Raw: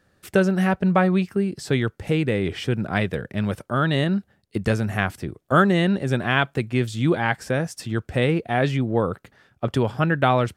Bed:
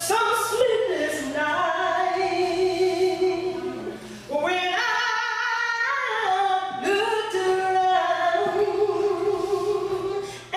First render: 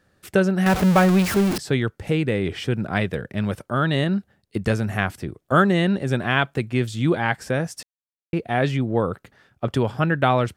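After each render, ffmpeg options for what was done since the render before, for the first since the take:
-filter_complex "[0:a]asettb=1/sr,asplit=3[a][b][c];[a]atrim=end=0.664[d];[b]atrim=start=0.66:end=1.58,asetpts=PTS-STARTPTS,afade=t=in:d=0.004:c=qsin,afade=t=out:st=0.916:d=0.004:c=qsin,aeval=exprs='val(0)+0.5*0.106*sgn(val(0))':c=same[e];[c]atrim=start=1.576[f];[d][e]acrossfade=d=0.004:c1=hsin:c2=qsin[g];[g][f]acrossfade=d=0.004:c1=qsin:c2=hsin,asplit=3[h][i][j];[h]atrim=end=7.83,asetpts=PTS-STARTPTS,afade=t=out:st=7.826:d=0.004:c=hsin[k];[i]atrim=start=7.83:end=8.33,asetpts=PTS-STARTPTS,volume=0[l];[j]atrim=start=8.33,asetpts=PTS-STARTPTS,afade=t=in:d=0.004:c=hsin[m];[k][l][m]concat=n=3:v=0:a=1"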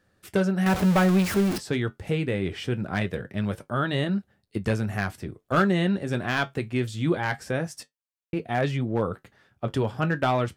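-af "asoftclip=type=hard:threshold=-10.5dB,flanger=delay=9.3:depth=1.9:regen=-59:speed=0.23:shape=sinusoidal"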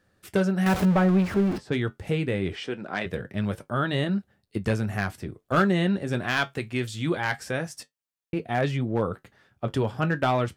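-filter_complex "[0:a]asettb=1/sr,asplit=3[a][b][c];[a]atrim=end=0.854[d];[b]atrim=start=0.85:end=1.72,asetpts=PTS-STARTPTS,afade=t=in:d=0.004:c=qsin,afade=t=out:st=0.866:d=0.004:c=qsin,lowpass=f=1.4k:p=1[e];[c]atrim=start=1.716[f];[d][e]acrossfade=d=0.004:c1=hsin:c2=qsin[g];[g][f]acrossfade=d=0.004:c1=qsin:c2=hsin,asplit=3[h][i][j];[h]afade=t=out:st=2.55:d=0.02[k];[i]highpass=300,lowpass=6.8k,afade=t=in:st=2.55:d=0.02,afade=t=out:st=3.05:d=0.02[l];[j]afade=t=in:st=3.05:d=0.02[m];[k][l][m]amix=inputs=3:normalize=0,asettb=1/sr,asplit=3[n][o][p];[n]atrim=end=6.234[q];[o]atrim=start=6.23:end=7.69,asetpts=PTS-STARTPTS,afade=t=in:d=0.004:c=qsin,afade=t=out:st=1.456:d=0.004:c=qsin,tiltshelf=f=970:g=-3[r];[p]atrim=start=7.686[s];[q][r]acrossfade=d=0.004:c1=hsin:c2=qsin[t];[t][s]acrossfade=d=0.004:c1=qsin:c2=hsin"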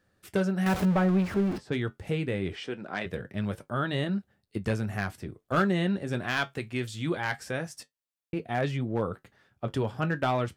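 -af "volume=-3.5dB"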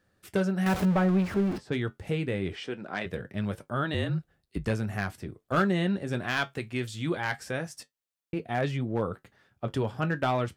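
-filter_complex "[0:a]asettb=1/sr,asplit=3[a][b][c];[a]atrim=end=3.944[d];[b]atrim=start=3.94:end=4.67,asetpts=PTS-STARTPTS,afade=t=in:d=0.004:c=qsin,afade=t=out:st=0.726:d=0.004:c=qsin,afreqshift=-42[e];[c]atrim=start=4.666[f];[d][e]acrossfade=d=0.004:c1=hsin:c2=qsin[g];[g][f]acrossfade=d=0.004:c1=qsin:c2=hsin"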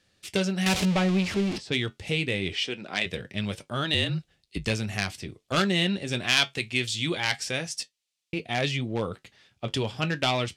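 -af "adynamicsmooth=sensitivity=2:basefreq=5.7k,aexciter=amount=7.3:drive=2.7:freq=2.2k"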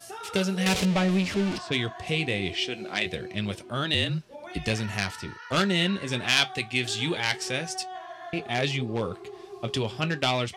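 -filter_complex "[1:a]volume=-18.5dB[a];[0:a][a]amix=inputs=2:normalize=0"

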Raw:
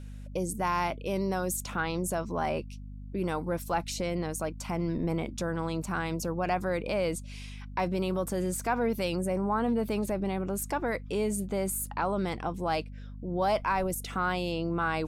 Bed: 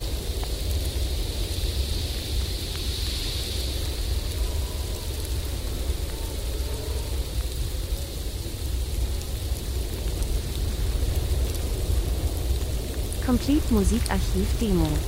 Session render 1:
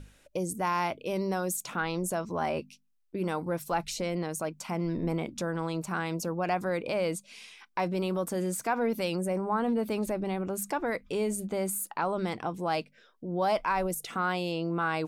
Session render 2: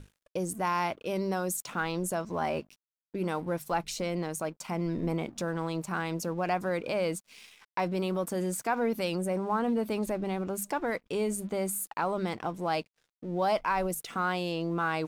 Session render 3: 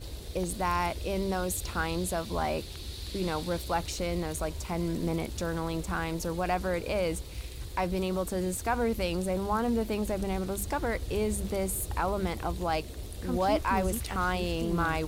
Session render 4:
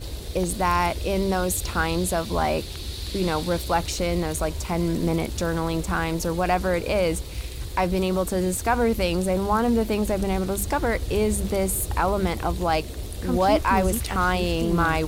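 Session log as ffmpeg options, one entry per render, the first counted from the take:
-af "bandreject=f=50:t=h:w=6,bandreject=f=100:t=h:w=6,bandreject=f=150:t=h:w=6,bandreject=f=200:t=h:w=6,bandreject=f=250:t=h:w=6"
-af "aeval=exprs='sgn(val(0))*max(abs(val(0))-0.00178,0)':c=same"
-filter_complex "[1:a]volume=-11.5dB[a];[0:a][a]amix=inputs=2:normalize=0"
-af "volume=7dB"

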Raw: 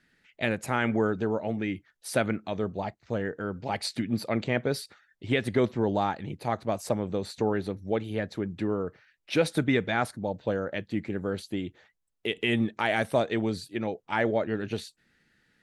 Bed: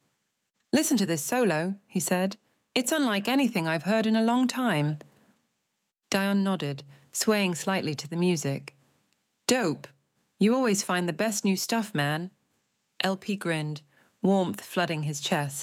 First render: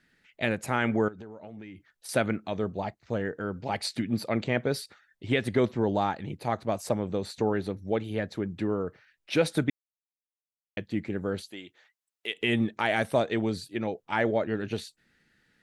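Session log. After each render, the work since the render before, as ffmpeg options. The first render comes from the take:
-filter_complex "[0:a]asettb=1/sr,asplit=3[a][b][c];[a]atrim=end=1.084[d];[b]atrim=start=1.08:end=2.09,asetpts=PTS-STARTPTS,afade=t=in:d=0.004:c=qsin,afade=t=out:st=1.006:d=0.004:c=qsin,acompressor=threshold=-39dB:ratio=12:attack=3.2:release=140:knee=1:detection=peak[e];[c]atrim=start=2.086[f];[d][e]acrossfade=d=0.004:c1=hsin:c2=qsin[g];[g][f]acrossfade=d=0.004:c1=qsin:c2=hsin,asettb=1/sr,asplit=3[h][i][j];[h]atrim=end=11.494[k];[i]atrim=start=11.49:end=12.41,asetpts=PTS-STARTPTS,afade=t=in:d=0.004:c=qsin,afade=t=out:st=0.916:d=0.004:c=qsin,highpass=f=1.2k:p=1[l];[j]atrim=start=12.406[m];[k][l]acrossfade=d=0.004:c1=hsin:c2=qsin[n];[n][m]acrossfade=d=0.004:c1=qsin:c2=hsin,asplit=3[o][p][q];[o]atrim=end=9.7,asetpts=PTS-STARTPTS,afade=t=out:st=9.696:d=0.004:c=hsin[r];[p]atrim=start=9.7:end=10.77,asetpts=PTS-STARTPTS,volume=0[s];[q]atrim=start=10.77,asetpts=PTS-STARTPTS,afade=t=in:d=0.004:c=hsin[t];[r][s][t]concat=n=3:v=0:a=1"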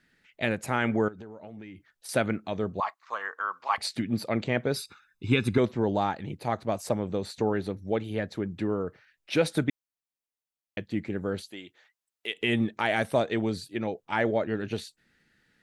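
-filter_complex "[0:a]asettb=1/sr,asplit=3[a][b][c];[a]atrim=end=2.804[d];[b]atrim=start=2.8:end=3.78,asetpts=PTS-STARTPTS,afade=t=in:d=0.004:c=qsin,afade=t=out:st=0.976:d=0.004:c=qsin,highpass=f=1.1k:t=q:w=11[e];[c]atrim=start=3.776[f];[d][e]acrossfade=d=0.004:c1=hsin:c2=qsin[g];[g][f]acrossfade=d=0.004:c1=qsin:c2=hsin,asettb=1/sr,asplit=3[h][i][j];[h]atrim=end=4.764[k];[i]atrim=start=4.76:end=5.58,asetpts=PTS-STARTPTS,afade=t=in:d=0.004:c=qsin,afade=t=out:st=0.816:d=0.004:c=qsin,aecho=1:1:0.8:0.92,atrim=end_sample=36162[l];[j]atrim=start=5.576[m];[k][l]acrossfade=d=0.004:c1=hsin:c2=qsin[n];[n][m]acrossfade=d=0.004:c1=qsin:c2=hsin"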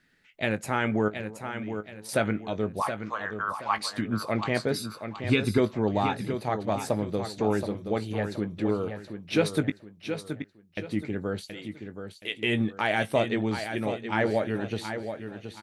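-filter_complex "[0:a]asplit=2[a][b];[b]adelay=19,volume=-11.5dB[c];[a][c]amix=inputs=2:normalize=0,aecho=1:1:724|1448|2172|2896:0.376|0.132|0.046|0.0161"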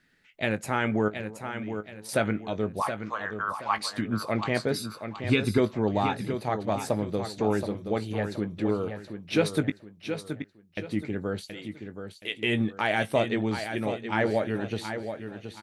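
-af anull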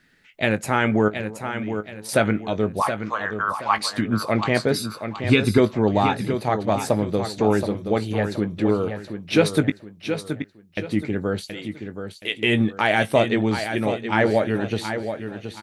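-af "volume=6.5dB"

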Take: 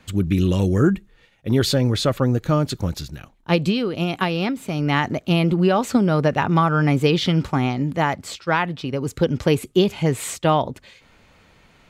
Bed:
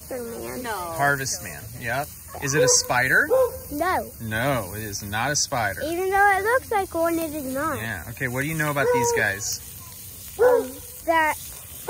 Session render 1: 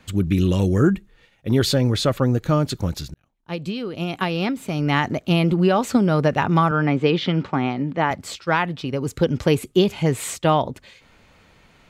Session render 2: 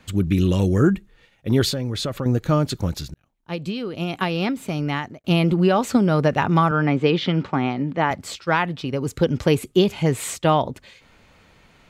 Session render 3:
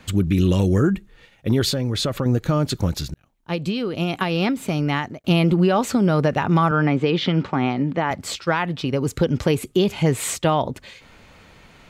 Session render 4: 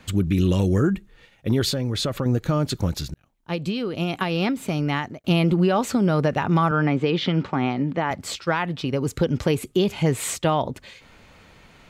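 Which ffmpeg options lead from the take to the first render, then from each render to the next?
-filter_complex "[0:a]asettb=1/sr,asplit=3[a][b][c];[a]atrim=end=6.714[d];[b]atrim=start=6.71:end=8.11,asetpts=PTS-STARTPTS,afade=t=in:d=0.004:c=qsin,afade=t=out:st=1.396:d=0.004:c=qsin,highpass=160,lowpass=3.3k[e];[c]atrim=start=8.106[f];[d][e]acrossfade=d=0.004:c1=hsin:c2=qsin[g];[g][f]acrossfade=d=0.004:c1=qsin:c2=hsin,asplit=2[h][i];[h]atrim=end=3.14,asetpts=PTS-STARTPTS,afade=t=out:st=3.136:d=0.004:c=hsin[j];[i]atrim=start=3.14,asetpts=PTS-STARTPTS,afade=t=in:d=1.33[k];[j][k]concat=n=2:v=0:a=1"
-filter_complex "[0:a]asettb=1/sr,asplit=3[a][b][c];[a]atrim=end=1.694[d];[b]atrim=start=1.69:end=2.26,asetpts=PTS-STARTPTS,afade=t=in:d=0.004:c=qsin,afade=t=out:st=0.566:d=0.004:c=qsin,acompressor=threshold=-23dB:ratio=3:attack=3.2:release=140:knee=1:detection=peak[e];[c]atrim=start=2.256[f];[d][e]acrossfade=d=0.004:c1=hsin:c2=qsin[g];[g][f]acrossfade=d=0.004:c1=qsin:c2=hsin,asplit=2[h][i];[h]atrim=end=5.24,asetpts=PTS-STARTPTS,afade=t=out:st=4.69:d=0.55[j];[i]atrim=start=5.24,asetpts=PTS-STARTPTS,afade=t=in:d=0.004:c=hsin[k];[j][k]concat=n=2:v=0:a=1"
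-filter_complex "[0:a]asplit=2[a][b];[b]acompressor=threshold=-28dB:ratio=6,volume=-2dB[c];[a][c]amix=inputs=2:normalize=0,alimiter=limit=-9dB:level=0:latency=1:release=93"
-af "volume=-2dB"

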